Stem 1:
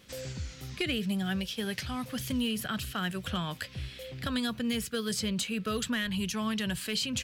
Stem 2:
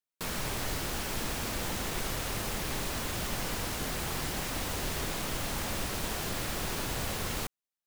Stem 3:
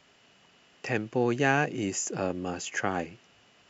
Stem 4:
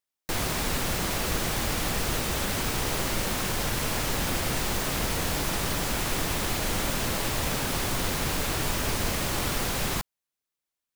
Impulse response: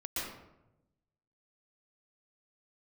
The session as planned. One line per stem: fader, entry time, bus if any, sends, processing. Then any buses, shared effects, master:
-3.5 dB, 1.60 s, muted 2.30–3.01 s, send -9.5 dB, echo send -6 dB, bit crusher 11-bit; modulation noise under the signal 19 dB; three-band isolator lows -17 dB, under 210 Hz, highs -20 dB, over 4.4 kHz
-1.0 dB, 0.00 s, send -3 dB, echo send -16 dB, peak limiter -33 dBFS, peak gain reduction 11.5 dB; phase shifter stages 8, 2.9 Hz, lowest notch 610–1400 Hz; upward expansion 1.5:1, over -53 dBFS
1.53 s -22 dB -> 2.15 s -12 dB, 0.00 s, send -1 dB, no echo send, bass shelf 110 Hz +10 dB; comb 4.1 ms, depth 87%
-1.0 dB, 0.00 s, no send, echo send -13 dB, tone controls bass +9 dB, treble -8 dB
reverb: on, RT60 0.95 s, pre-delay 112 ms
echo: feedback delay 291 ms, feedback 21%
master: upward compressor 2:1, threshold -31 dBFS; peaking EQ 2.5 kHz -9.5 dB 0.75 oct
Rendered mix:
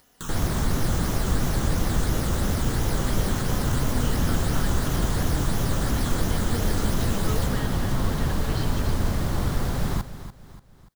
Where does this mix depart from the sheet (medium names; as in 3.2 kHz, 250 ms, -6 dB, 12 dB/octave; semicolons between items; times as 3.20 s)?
stem 2 -1.0 dB -> +10.0 dB; stem 3 -22.0 dB -> -32.5 dB